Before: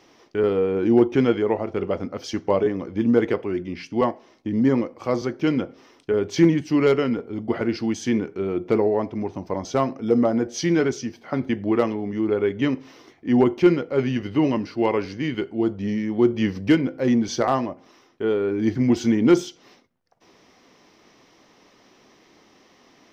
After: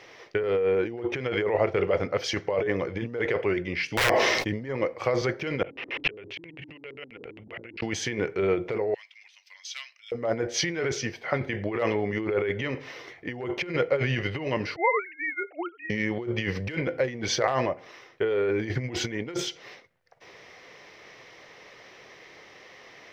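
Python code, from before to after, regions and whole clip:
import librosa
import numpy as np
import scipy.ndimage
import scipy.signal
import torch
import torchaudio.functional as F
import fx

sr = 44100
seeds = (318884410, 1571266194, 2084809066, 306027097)

y = fx.chain(x, sr, fx.high_shelf(hz=3400.0, db=8.5),
    fx.overflow_wrap(gain_db=16.0),
    fx.sustainer(db_per_s=30.0), at=(3.88, 4.51))
y = fx.chain(y, sr, fx.filter_lfo_lowpass(shape='square', hz=7.5, low_hz=290.0, high_hz=2700.0, q=6.6),
    fx.env_flatten(amount_pct=100), at=(5.64, 7.81))
y = fx.chain(y, sr, fx.ladder_highpass(hz=2400.0, resonance_pct=35),
    fx.high_shelf(hz=4900.0, db=4.0), at=(8.94, 10.12))
y = fx.chain(y, sr, fx.sine_speech(),
    fx.cheby1_highpass(hz=840.0, order=2),
    fx.peak_eq(hz=1300.0, db=9.0, octaves=0.21), at=(14.76, 15.9))
y = fx.over_compress(y, sr, threshold_db=-25.0, ratio=-1.0)
y = fx.graphic_eq(y, sr, hz=(125, 250, 500, 2000, 4000), db=(6, -10, 9, 12, 3))
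y = F.gain(torch.from_numpy(y), -9.0).numpy()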